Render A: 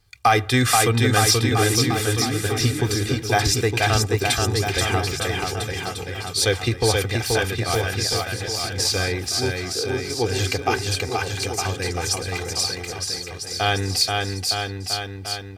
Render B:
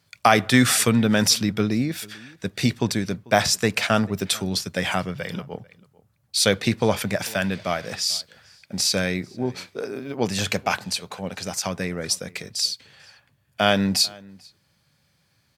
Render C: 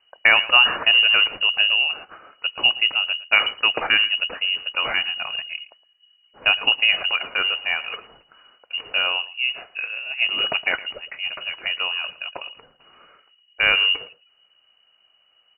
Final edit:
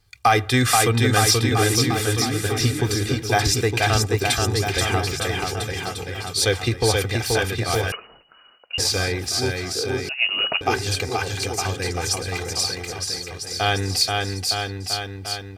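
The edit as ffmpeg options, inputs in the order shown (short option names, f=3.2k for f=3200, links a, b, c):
-filter_complex "[2:a]asplit=2[a][b];[0:a]asplit=3[c][d][e];[c]atrim=end=7.922[f];[a]atrim=start=7.918:end=8.782[g];[d]atrim=start=8.778:end=10.092[h];[b]atrim=start=10.088:end=10.612[i];[e]atrim=start=10.608[j];[f][g]acrossfade=d=0.004:c1=hsin:c2=hsin[k];[k][h]acrossfade=d=0.004:c1=hsin:c2=hsin[l];[l][i]acrossfade=d=0.004:c1=hsin:c2=hsin[m];[m][j]acrossfade=d=0.004:c1=hsin:c2=hsin"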